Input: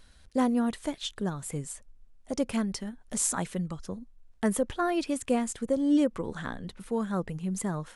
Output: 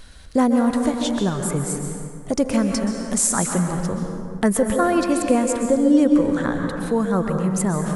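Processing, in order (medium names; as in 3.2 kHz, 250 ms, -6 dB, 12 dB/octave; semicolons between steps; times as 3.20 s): plate-style reverb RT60 2 s, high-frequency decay 0.5×, pre-delay 115 ms, DRR 4 dB; in parallel at +2 dB: compression, threshold -34 dBFS, peak gain reduction 15 dB; on the sum: dynamic bell 3.2 kHz, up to -6 dB, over -51 dBFS, Q 1.9; trim +5.5 dB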